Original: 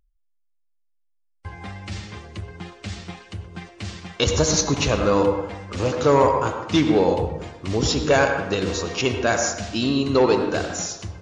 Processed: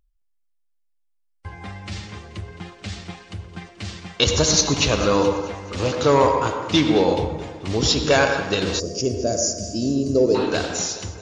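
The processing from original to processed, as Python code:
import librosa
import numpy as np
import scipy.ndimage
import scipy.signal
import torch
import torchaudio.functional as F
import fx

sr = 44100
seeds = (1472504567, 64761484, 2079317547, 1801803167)

y = fx.echo_thinned(x, sr, ms=216, feedback_pct=58, hz=160.0, wet_db=-15.0)
y = fx.dynamic_eq(y, sr, hz=4000.0, q=1.0, threshold_db=-41.0, ratio=4.0, max_db=6)
y = fx.spec_box(y, sr, start_s=8.8, length_s=1.55, low_hz=690.0, high_hz=4500.0, gain_db=-22)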